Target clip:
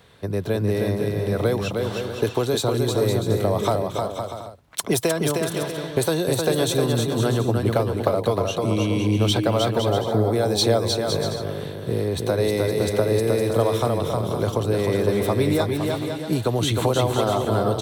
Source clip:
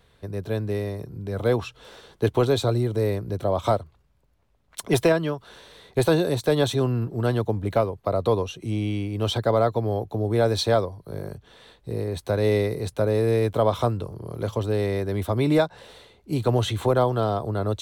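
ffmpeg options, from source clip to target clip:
ffmpeg -i in.wav -filter_complex "[0:a]highpass=94,acrossover=split=5000[link_01][link_02];[link_01]acompressor=threshold=-27dB:ratio=6[link_03];[link_03][link_02]amix=inputs=2:normalize=0,aecho=1:1:310|511.5|642.5|727.6|782.9:0.631|0.398|0.251|0.158|0.1,volume=8dB" out.wav

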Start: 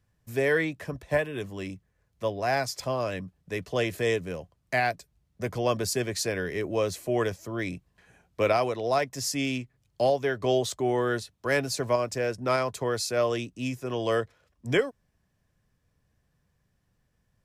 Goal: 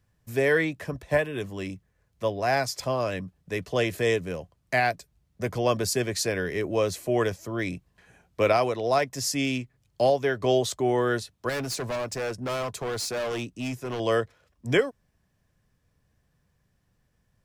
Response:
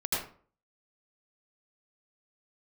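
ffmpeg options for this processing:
-filter_complex "[0:a]asettb=1/sr,asplit=3[link_01][link_02][link_03];[link_01]atrim=end=11.494[link_04];[link_02]atrim=start=11.49:end=14,asetpts=PTS-STARTPTS,afade=type=in:duration=0.004:curve=qsin,afade=type=out:start_time=2.506:duration=0.004:curve=qsin,volume=29.5dB,asoftclip=hard,volume=-29.5dB[link_05];[link_03]atrim=start=13.996[link_06];[link_04][link_05]acrossfade=duration=0.004:curve1=hsin:curve2=qsin[link_07];[link_07][link_06]acrossfade=duration=0.004:curve1=qsin:curve2=hsin,volume=2dB"

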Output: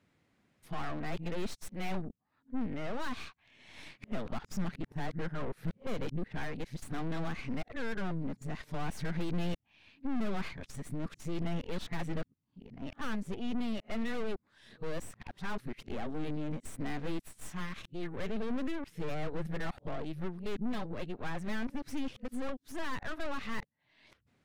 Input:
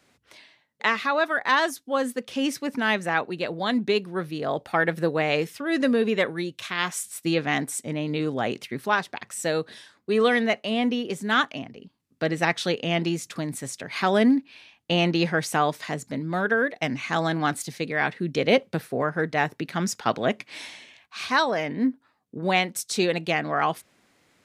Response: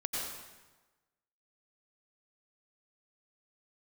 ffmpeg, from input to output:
-af "areverse,aeval=exprs='(tanh(35.5*val(0)+0.8)-tanh(0.8))/35.5':channel_layout=same,bass=frequency=250:gain=10,treble=frequency=4000:gain=-7,volume=-6.5dB"

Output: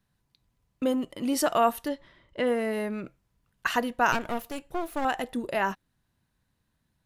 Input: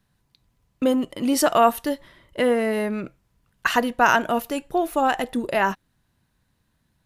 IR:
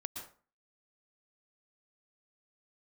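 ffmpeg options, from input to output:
-filter_complex "[0:a]asettb=1/sr,asplit=3[link_01][link_02][link_03];[link_01]atrim=end=1.884[link_04];[link_02]atrim=start=1.88:end=2.47,asetpts=PTS-STARTPTS,afade=type=in:duration=0.004:curve=qsin,afade=type=out:start_time=0.586:duration=0.004:curve=qsin,lowpass=5700[link_05];[link_03]atrim=start=2.466[link_06];[link_04][link_05]acrossfade=duration=0.004:curve1=hsin:curve2=qsin[link_07];[link_07][link_06]acrossfade=duration=0.004:curve1=qsin:curve2=hsin,asettb=1/sr,asplit=3[link_08][link_09][link_10];[link_08]atrim=end=4.124[link_11];[link_09]atrim=start=4.12:end=5.05,asetpts=PTS-STARTPTS,afade=type=in:duration=0.004:curve=qsin,afade=type=out:start_time=0.926:duration=0.004:curve=qsin,aeval=exprs='clip(val(0),-1,0.01)':channel_layout=same[link_12];[link_10]atrim=start=5.046[link_13];[link_11][link_12]acrossfade=duration=0.004:curve1=hsin:curve2=qsin[link_14];[link_14][link_13]acrossfade=duration=0.004:curve1=qsin:curve2=hsin,volume=-6dB"

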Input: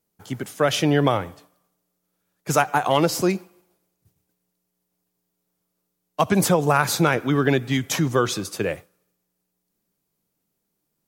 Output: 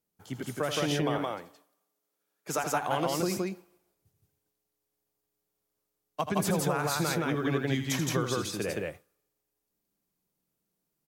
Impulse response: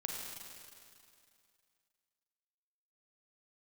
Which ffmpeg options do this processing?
-filter_complex "[0:a]asettb=1/sr,asplit=3[link_01][link_02][link_03];[link_01]atrim=end=1.014[link_04];[link_02]atrim=start=1.01:end=2.64,asetpts=PTS-STARTPTS,afade=type=in:duration=0.004:curve=qsin,afade=type=out:start_time=1.626:duration=0.004:curve=qsin,highpass=230[link_05];[link_03]atrim=start=2.636[link_06];[link_04][link_05]acrossfade=duration=0.004:curve1=hsin:curve2=qsin[link_07];[link_07][link_06]acrossfade=duration=0.004:curve1=qsin:curve2=hsin,acompressor=threshold=-19dB:ratio=4,asplit=2[link_08][link_09];[link_09]aecho=0:1:81.63|169.1:0.355|0.891[link_10];[link_08][link_10]amix=inputs=2:normalize=0,volume=-8dB"

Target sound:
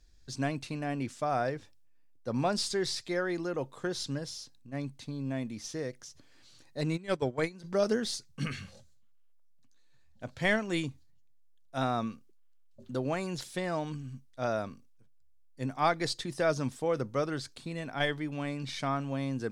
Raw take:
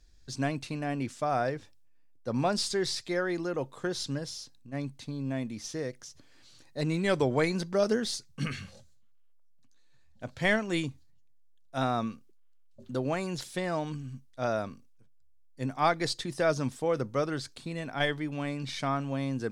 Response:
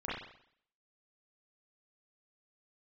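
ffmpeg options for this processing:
-filter_complex "[0:a]asplit=3[link_01][link_02][link_03];[link_01]afade=type=out:start_time=6.96:duration=0.02[link_04];[link_02]agate=range=-17dB:threshold=-24dB:ratio=16:detection=peak,afade=type=in:start_time=6.96:duration=0.02,afade=type=out:start_time=7.63:duration=0.02[link_05];[link_03]afade=type=in:start_time=7.63:duration=0.02[link_06];[link_04][link_05][link_06]amix=inputs=3:normalize=0,volume=-1.5dB"

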